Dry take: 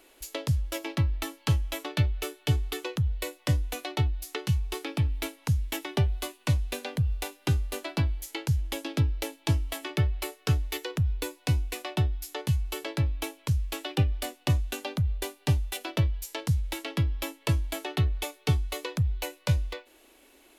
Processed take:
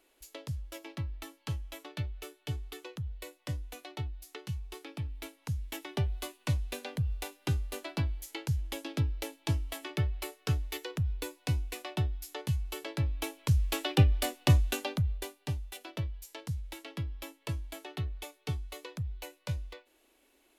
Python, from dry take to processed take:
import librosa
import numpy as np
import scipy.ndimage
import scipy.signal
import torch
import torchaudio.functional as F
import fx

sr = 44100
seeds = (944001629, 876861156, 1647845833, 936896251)

y = fx.gain(x, sr, db=fx.line((5.12, -11.0), (6.19, -5.0), (12.94, -5.0), (13.71, 2.0), (14.7, 2.0), (15.5, -10.0)))